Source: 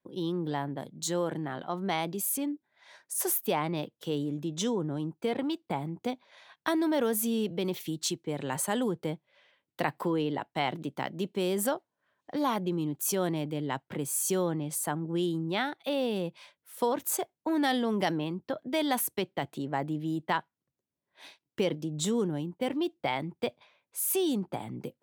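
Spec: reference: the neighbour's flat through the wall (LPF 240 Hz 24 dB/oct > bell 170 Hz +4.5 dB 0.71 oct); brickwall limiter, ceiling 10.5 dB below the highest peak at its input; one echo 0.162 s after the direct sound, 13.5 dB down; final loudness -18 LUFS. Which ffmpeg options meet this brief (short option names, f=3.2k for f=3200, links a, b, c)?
-af "alimiter=limit=-23.5dB:level=0:latency=1,lowpass=f=240:w=0.5412,lowpass=f=240:w=1.3066,equalizer=f=170:t=o:w=0.71:g=4.5,aecho=1:1:162:0.211,volume=19.5dB"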